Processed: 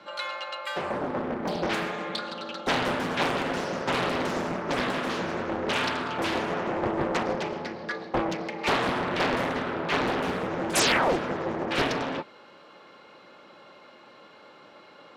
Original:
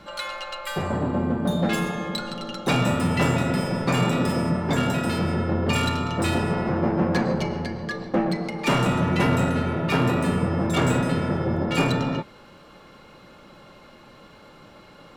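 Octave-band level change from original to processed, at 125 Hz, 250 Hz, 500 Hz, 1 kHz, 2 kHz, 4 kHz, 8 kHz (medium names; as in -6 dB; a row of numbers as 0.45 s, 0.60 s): -14.5 dB, -8.0 dB, -2.0 dB, -0.5 dB, 0.0 dB, 0.0 dB, +0.5 dB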